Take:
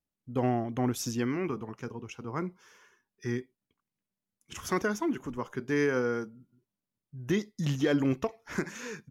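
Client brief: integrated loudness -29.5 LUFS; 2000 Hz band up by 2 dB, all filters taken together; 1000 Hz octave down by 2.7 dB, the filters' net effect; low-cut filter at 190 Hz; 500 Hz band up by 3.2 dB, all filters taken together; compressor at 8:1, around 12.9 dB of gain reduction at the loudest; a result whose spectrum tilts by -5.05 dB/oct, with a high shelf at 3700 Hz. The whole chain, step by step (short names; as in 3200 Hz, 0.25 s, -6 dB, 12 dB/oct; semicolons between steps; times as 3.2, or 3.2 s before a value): HPF 190 Hz; bell 500 Hz +5.5 dB; bell 1000 Hz -7.5 dB; bell 2000 Hz +7 dB; high shelf 3700 Hz -8.5 dB; compressor 8:1, threshold -34 dBFS; gain +10.5 dB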